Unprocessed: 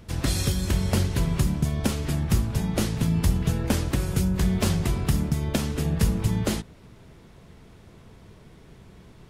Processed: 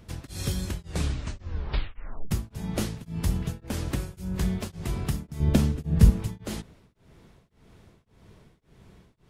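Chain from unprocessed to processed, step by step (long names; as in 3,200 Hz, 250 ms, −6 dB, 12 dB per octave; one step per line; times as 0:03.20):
0:00.68: tape stop 1.63 s
0:05.40–0:06.10: low-shelf EQ 370 Hz +11.5 dB
tremolo along a rectified sine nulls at 1.8 Hz
level −3.5 dB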